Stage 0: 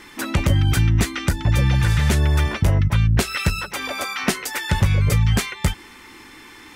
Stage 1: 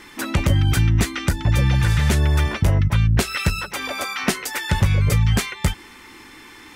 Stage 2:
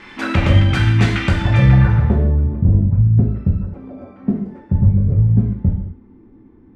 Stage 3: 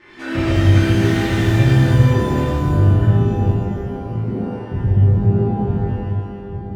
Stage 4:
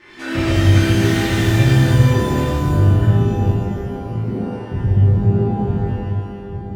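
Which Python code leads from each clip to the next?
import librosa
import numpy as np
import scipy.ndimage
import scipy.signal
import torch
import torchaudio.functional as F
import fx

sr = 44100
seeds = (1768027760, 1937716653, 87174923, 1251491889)

y1 = x
y2 = fx.high_shelf(y1, sr, hz=7100.0, db=6.0)
y2 = fx.filter_sweep_lowpass(y2, sr, from_hz=2900.0, to_hz=270.0, start_s=1.49, end_s=2.41, q=1.0)
y2 = fx.rev_gated(y2, sr, seeds[0], gate_ms=270, shape='falling', drr_db=-1.5)
y2 = y2 * librosa.db_to_amplitude(1.0)
y3 = fx.reverse_delay(y2, sr, ms=611, wet_db=-6.5)
y3 = fx.small_body(y3, sr, hz=(340.0, 1800.0), ring_ms=45, db=11)
y3 = fx.rev_shimmer(y3, sr, seeds[1], rt60_s=1.4, semitones=12, shimmer_db=-8, drr_db=-8.5)
y3 = y3 * librosa.db_to_amplitude(-14.0)
y4 = fx.high_shelf(y3, sr, hz=3500.0, db=7.0)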